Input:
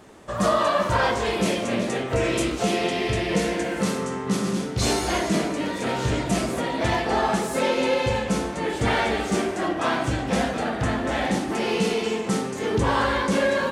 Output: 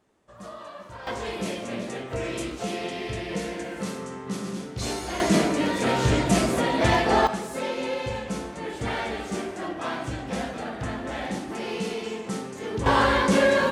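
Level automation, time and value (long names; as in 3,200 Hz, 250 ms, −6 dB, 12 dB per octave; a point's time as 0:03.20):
−20 dB
from 0:01.07 −7.5 dB
from 0:05.20 +2.5 dB
from 0:07.27 −7 dB
from 0:12.86 +2 dB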